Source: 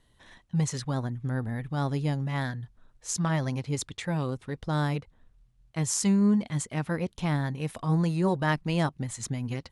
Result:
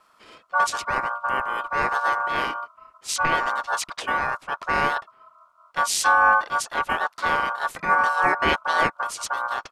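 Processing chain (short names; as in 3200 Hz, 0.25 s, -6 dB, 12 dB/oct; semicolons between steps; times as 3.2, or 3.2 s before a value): ring modulator 1300 Hz; harmoniser -12 st -11 dB, -4 st -2 dB; gain +5.5 dB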